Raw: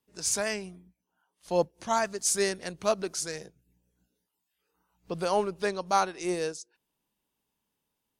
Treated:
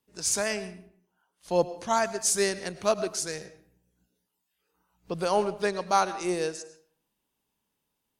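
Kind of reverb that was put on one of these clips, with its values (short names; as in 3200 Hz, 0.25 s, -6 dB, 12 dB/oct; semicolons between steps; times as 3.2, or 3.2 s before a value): digital reverb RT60 0.58 s, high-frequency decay 0.7×, pre-delay 65 ms, DRR 14 dB; gain +1.5 dB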